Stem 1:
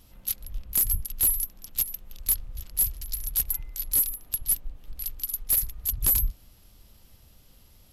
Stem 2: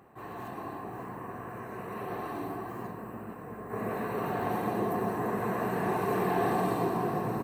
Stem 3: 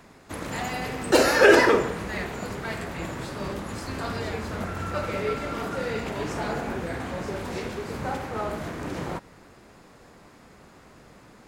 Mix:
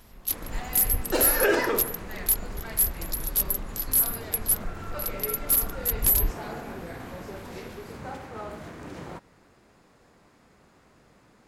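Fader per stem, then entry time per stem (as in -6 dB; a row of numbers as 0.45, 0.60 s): +1.0, -19.0, -7.5 dB; 0.00, 0.00, 0.00 s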